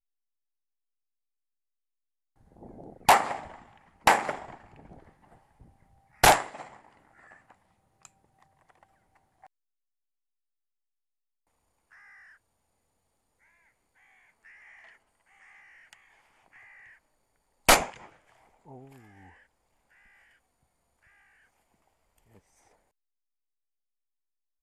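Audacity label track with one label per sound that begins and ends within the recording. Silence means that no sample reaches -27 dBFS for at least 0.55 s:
3.090000	3.350000	sound
4.070000	4.350000	sound
6.240000	6.410000	sound
17.690000	17.840000	sound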